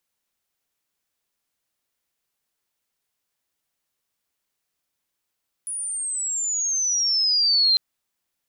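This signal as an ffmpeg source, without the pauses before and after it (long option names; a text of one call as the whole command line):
ffmpeg -f lavfi -i "aevalsrc='pow(10,(-27+12.5*t/2.1)/20)*sin(2*PI*9900*2.1/log(4100/9900)*(exp(log(4100/9900)*t/2.1)-1))':duration=2.1:sample_rate=44100" out.wav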